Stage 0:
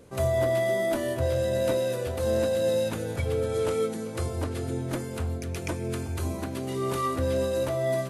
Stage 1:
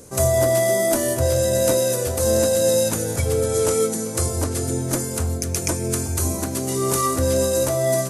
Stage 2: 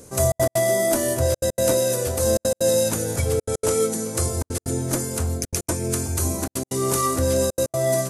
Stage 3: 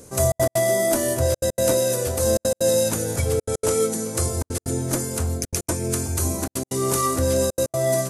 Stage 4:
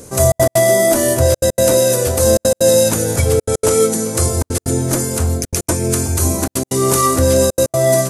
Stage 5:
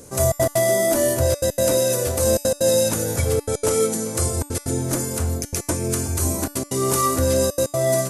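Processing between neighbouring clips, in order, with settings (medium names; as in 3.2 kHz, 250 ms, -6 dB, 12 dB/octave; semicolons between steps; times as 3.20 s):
resonant high shelf 4.6 kHz +11 dB, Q 1.5; trim +6.5 dB
trance gate "xxxx.x.xxxxxx" 190 bpm -60 dB; trim -1 dB
no audible change
loudness maximiser +9 dB; trim -1 dB
feedback comb 290 Hz, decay 0.55 s, harmonics all, mix 70%; trim +3.5 dB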